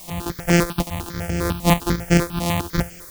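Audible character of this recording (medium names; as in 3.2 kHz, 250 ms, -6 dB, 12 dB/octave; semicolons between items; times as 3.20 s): a buzz of ramps at a fixed pitch in blocks of 256 samples; tremolo saw up 4.6 Hz, depth 65%; a quantiser's noise floor 8-bit, dither triangular; notches that jump at a steady rate 10 Hz 410–3800 Hz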